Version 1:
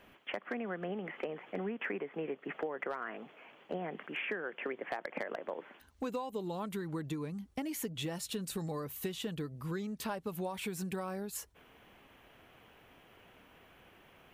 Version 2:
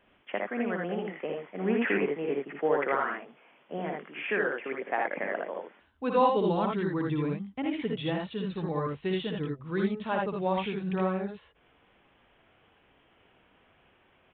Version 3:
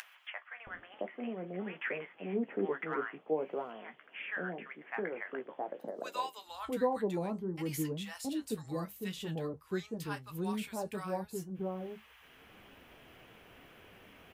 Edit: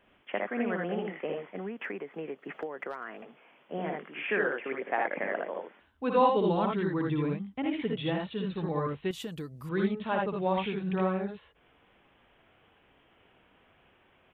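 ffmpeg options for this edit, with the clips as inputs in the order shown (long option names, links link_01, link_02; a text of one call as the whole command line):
ffmpeg -i take0.wav -i take1.wav -filter_complex "[0:a]asplit=2[link_01][link_02];[1:a]asplit=3[link_03][link_04][link_05];[link_03]atrim=end=1.562[link_06];[link_01]atrim=start=1.558:end=3.222[link_07];[link_04]atrim=start=3.218:end=9.112[link_08];[link_02]atrim=start=9.108:end=9.692[link_09];[link_05]atrim=start=9.688[link_10];[link_06][link_07]acrossfade=duration=0.004:curve1=hsin:curve2=hsin[link_11];[link_11][link_08]acrossfade=duration=0.004:curve1=hsin:curve2=hsin[link_12];[link_12][link_09]acrossfade=duration=0.004:curve1=hsin:curve2=hsin[link_13];[link_13][link_10]acrossfade=duration=0.004:curve1=hsin:curve2=hsin" out.wav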